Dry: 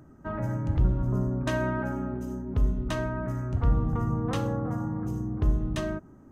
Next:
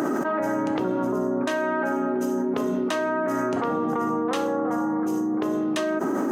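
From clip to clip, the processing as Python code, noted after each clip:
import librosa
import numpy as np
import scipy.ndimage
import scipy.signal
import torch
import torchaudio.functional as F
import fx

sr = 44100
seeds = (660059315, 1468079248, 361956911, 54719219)

y = scipy.signal.sosfilt(scipy.signal.butter(4, 280.0, 'highpass', fs=sr, output='sos'), x)
y = fx.env_flatten(y, sr, amount_pct=100)
y = y * librosa.db_to_amplitude(3.0)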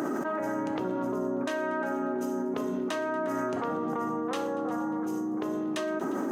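y = fx.echo_heads(x, sr, ms=118, heads='all three', feedback_pct=42, wet_db=-23)
y = y * librosa.db_to_amplitude(-6.0)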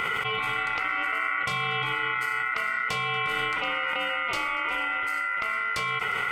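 y = x * np.sin(2.0 * np.pi * 1700.0 * np.arange(len(x)) / sr)
y = y * librosa.db_to_amplitude(5.5)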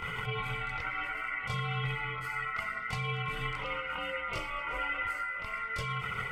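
y = fx.low_shelf(x, sr, hz=210.0, db=11.5)
y = fx.chorus_voices(y, sr, voices=6, hz=0.84, base_ms=24, depth_ms=1.2, mix_pct=65)
y = y * librosa.db_to_amplitude(-6.0)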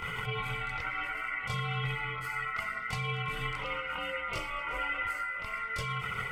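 y = fx.high_shelf(x, sr, hz=5600.0, db=4.5)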